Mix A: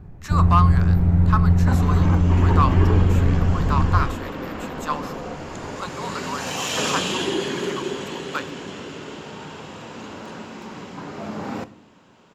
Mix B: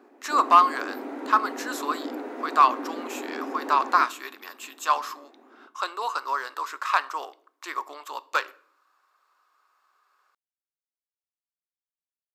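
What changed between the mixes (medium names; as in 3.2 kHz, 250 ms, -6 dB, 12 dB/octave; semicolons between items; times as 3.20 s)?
speech +4.0 dB; second sound: muted; master: add brick-wall FIR high-pass 240 Hz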